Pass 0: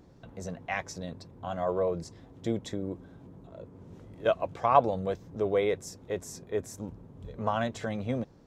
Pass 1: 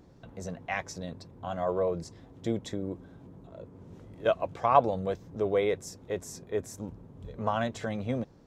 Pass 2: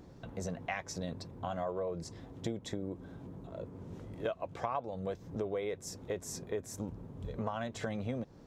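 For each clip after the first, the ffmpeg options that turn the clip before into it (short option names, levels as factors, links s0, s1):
-af anull
-af "acompressor=threshold=0.0158:ratio=6,volume=1.33"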